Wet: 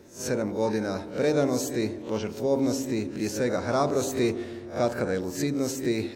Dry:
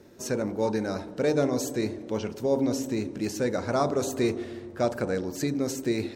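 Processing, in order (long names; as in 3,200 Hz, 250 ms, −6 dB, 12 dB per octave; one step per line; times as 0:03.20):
peak hold with a rise ahead of every peak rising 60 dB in 0.31 s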